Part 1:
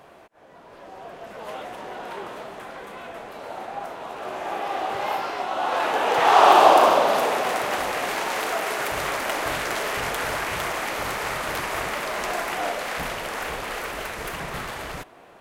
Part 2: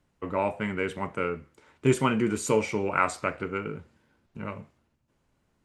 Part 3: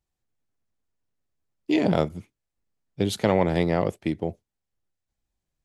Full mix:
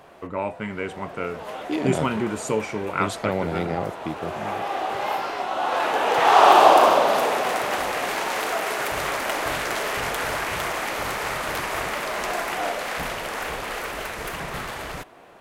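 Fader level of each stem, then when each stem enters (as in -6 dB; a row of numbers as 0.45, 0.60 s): +0.5, -0.5, -4.5 dB; 0.00, 0.00, 0.00 s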